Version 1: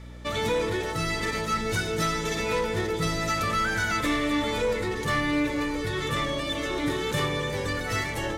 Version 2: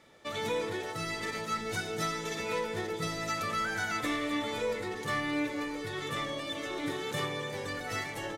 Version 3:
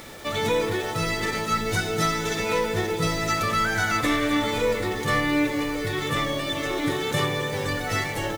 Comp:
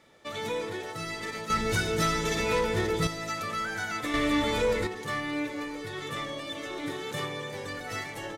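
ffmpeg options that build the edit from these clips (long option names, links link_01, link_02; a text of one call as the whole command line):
ffmpeg -i take0.wav -i take1.wav -filter_complex "[0:a]asplit=2[link_01][link_02];[1:a]asplit=3[link_03][link_04][link_05];[link_03]atrim=end=1.502[link_06];[link_01]atrim=start=1.498:end=3.072[link_07];[link_04]atrim=start=3.068:end=4.142[link_08];[link_02]atrim=start=4.138:end=4.872[link_09];[link_05]atrim=start=4.868[link_10];[link_06][link_07]acrossfade=duration=0.004:curve1=hsin:curve2=hsin[link_11];[link_11][link_08]acrossfade=duration=0.004:curve1=hsin:curve2=hsin[link_12];[link_12][link_09]acrossfade=duration=0.004:curve1=hsin:curve2=hsin[link_13];[link_13][link_10]acrossfade=duration=0.004:curve1=hsin:curve2=hsin" out.wav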